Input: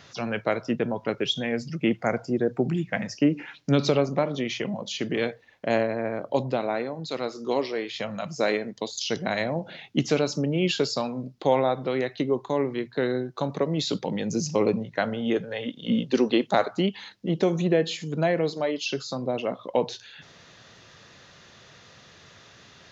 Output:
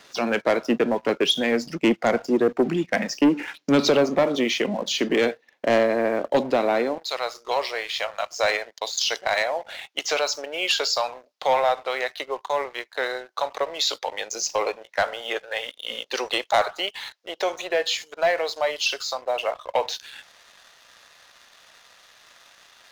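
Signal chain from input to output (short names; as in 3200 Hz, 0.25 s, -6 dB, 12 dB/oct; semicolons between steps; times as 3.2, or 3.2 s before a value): HPF 230 Hz 24 dB/oct, from 6.98 s 620 Hz; sample leveller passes 2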